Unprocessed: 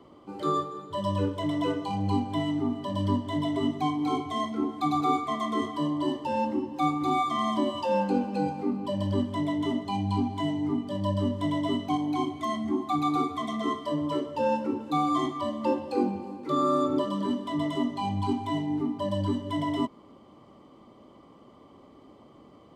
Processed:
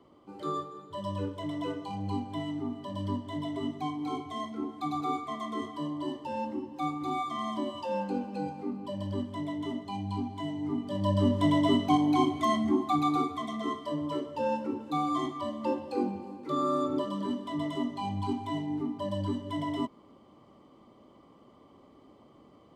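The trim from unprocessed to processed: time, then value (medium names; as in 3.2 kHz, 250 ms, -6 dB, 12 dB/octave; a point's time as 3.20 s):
10.50 s -6.5 dB
11.35 s +3.5 dB
12.51 s +3.5 dB
13.50 s -4 dB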